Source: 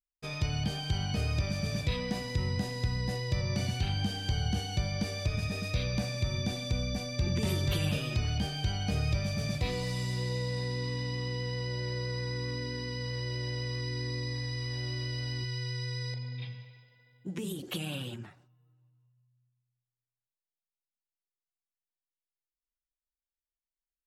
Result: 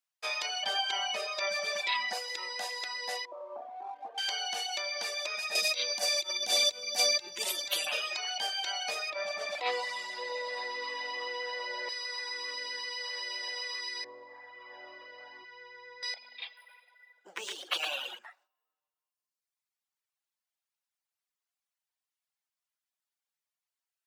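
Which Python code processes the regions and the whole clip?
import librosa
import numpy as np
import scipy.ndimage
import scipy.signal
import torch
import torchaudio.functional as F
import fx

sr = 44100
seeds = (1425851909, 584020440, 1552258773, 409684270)

y = fx.chain(x, sr, fx.high_shelf(hz=5400.0, db=-10.0),
    fx.comb(ms=5.1, depth=0.94), at=(0.62, 2.13))
y = fx.chain(y, sr, fx.cheby1_bandpass(low_hz=230.0, high_hz=1100.0, order=4),
    fx.backlash(play_db=-58.0), at=(3.25, 4.18))
y = fx.chain(y, sr, fx.peak_eq(hz=1300.0, db=-12.5, octaves=2.7),
    fx.env_flatten(amount_pct=100), at=(5.55, 7.87))
y = fx.chain(y, sr, fx.lowpass(hz=1400.0, slope=6),
    fx.env_flatten(amount_pct=70), at=(9.1, 11.89))
y = fx.chain(y, sr, fx.lowpass(hz=1200.0, slope=12),
    fx.low_shelf(hz=220.0, db=7.0), at=(14.04, 16.03))
y = fx.chain(y, sr, fx.peak_eq(hz=1300.0, db=4.5, octaves=0.91),
    fx.echo_single(ms=112, db=-4.5),
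    fx.resample_linear(factor=3), at=(16.57, 18.19))
y = scipy.signal.sosfilt(scipy.signal.butter(4, 650.0, 'highpass', fs=sr, output='sos'), y)
y = fx.dereverb_blind(y, sr, rt60_s=1.3)
y = fx.high_shelf(y, sr, hz=11000.0, db=-5.5)
y = F.gain(torch.from_numpy(y), 8.5).numpy()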